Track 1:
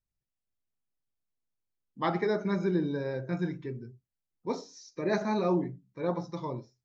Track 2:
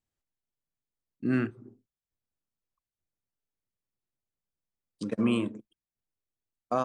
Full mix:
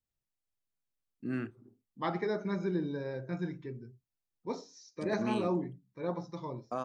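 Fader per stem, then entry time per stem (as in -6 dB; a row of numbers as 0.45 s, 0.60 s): -4.5 dB, -8.5 dB; 0.00 s, 0.00 s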